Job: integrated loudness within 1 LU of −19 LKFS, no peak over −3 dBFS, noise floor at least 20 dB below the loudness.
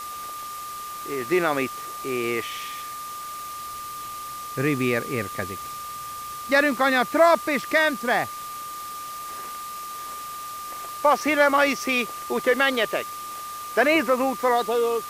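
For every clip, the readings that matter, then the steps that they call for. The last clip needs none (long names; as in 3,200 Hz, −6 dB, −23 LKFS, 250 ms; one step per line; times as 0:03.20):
interfering tone 1,200 Hz; level of the tone −33 dBFS; background noise floor −35 dBFS; target noise floor −45 dBFS; integrated loudness −24.5 LKFS; sample peak −7.5 dBFS; target loudness −19.0 LKFS
→ notch filter 1,200 Hz, Q 30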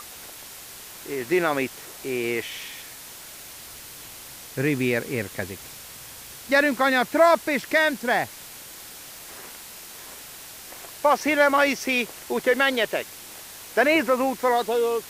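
interfering tone none found; background noise floor −42 dBFS; target noise floor −43 dBFS
→ broadband denoise 6 dB, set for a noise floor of −42 dBFS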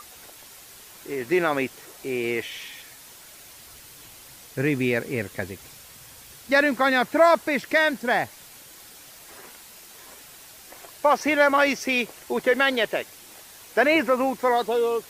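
background noise floor −47 dBFS; integrated loudness −23.0 LKFS; sample peak −7.5 dBFS; target loudness −19.0 LKFS
→ level +4 dB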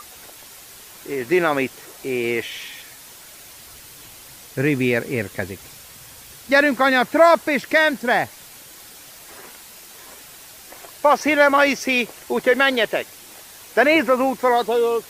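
integrated loudness −19.0 LKFS; sample peak −3.5 dBFS; background noise floor −43 dBFS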